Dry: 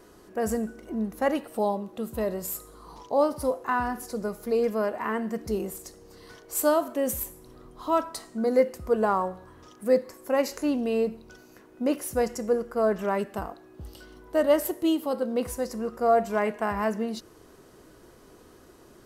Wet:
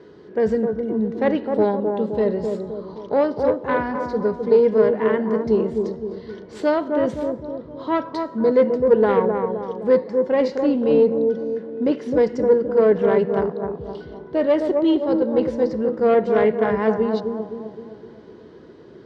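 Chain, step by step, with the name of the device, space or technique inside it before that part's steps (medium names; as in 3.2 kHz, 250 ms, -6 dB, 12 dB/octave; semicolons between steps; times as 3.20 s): analogue delay pedal into a guitar amplifier (bucket-brigade echo 259 ms, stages 2048, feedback 49%, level -5 dB; valve stage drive 16 dB, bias 0.45; cabinet simulation 90–4000 Hz, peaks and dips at 160 Hz +6 dB, 430 Hz +7 dB, 710 Hz -7 dB, 1.2 kHz -8 dB, 2.6 kHz -7 dB); trim +7.5 dB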